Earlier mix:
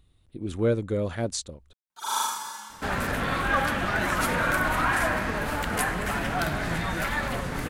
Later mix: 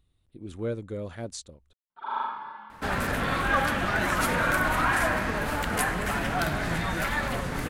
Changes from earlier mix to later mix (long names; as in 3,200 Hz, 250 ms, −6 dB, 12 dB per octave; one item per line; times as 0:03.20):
speech −7.5 dB
first sound: add Gaussian smoothing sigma 4 samples